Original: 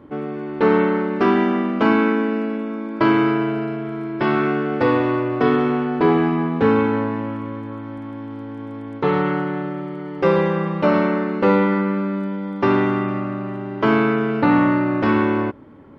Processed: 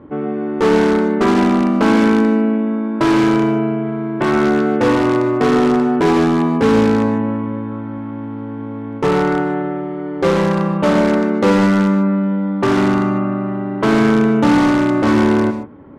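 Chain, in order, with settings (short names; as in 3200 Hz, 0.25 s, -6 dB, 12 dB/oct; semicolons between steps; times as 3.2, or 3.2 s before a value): high shelf 3100 Hz -11.5 dB; in parallel at -8.5 dB: wrapped overs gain 13 dB; on the sum: air absorption 75 m; non-linear reverb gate 0.17 s rising, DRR 9 dB; gain +2 dB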